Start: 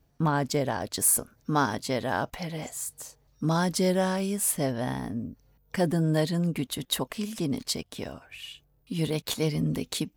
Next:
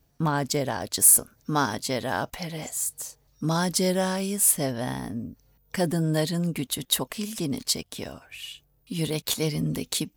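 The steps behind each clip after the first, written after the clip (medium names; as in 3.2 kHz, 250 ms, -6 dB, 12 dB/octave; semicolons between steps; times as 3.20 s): treble shelf 3.9 kHz +7.5 dB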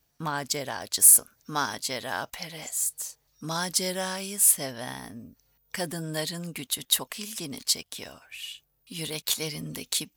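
tilt shelf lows -6 dB, about 730 Hz; trim -5 dB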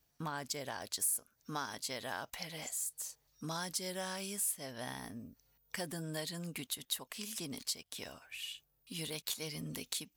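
compression 2.5:1, threshold -34 dBFS, peak gain reduction 15 dB; trim -4.5 dB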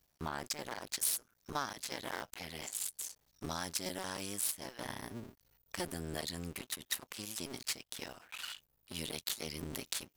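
cycle switcher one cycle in 2, muted; trim +3 dB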